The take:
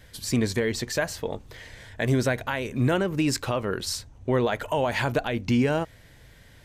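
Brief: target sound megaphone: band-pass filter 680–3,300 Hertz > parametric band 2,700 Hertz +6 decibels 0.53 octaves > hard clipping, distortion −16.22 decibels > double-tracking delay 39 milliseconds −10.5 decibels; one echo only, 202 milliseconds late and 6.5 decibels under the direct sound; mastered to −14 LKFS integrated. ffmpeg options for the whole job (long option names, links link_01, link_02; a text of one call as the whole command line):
ffmpeg -i in.wav -filter_complex "[0:a]highpass=680,lowpass=3300,equalizer=frequency=2700:width_type=o:width=0.53:gain=6,aecho=1:1:202:0.473,asoftclip=type=hard:threshold=-21dB,asplit=2[link_01][link_02];[link_02]adelay=39,volume=-10.5dB[link_03];[link_01][link_03]amix=inputs=2:normalize=0,volume=17dB" out.wav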